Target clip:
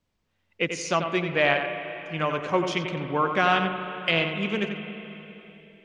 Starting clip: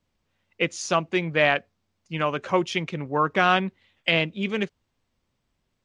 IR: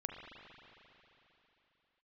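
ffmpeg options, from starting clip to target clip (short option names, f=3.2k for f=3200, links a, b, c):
-filter_complex "[0:a]asplit=2[a][b];[1:a]atrim=start_sample=2205,lowpass=5k,adelay=90[c];[b][c]afir=irnorm=-1:irlink=0,volume=-4.5dB[d];[a][d]amix=inputs=2:normalize=0,volume=-2dB"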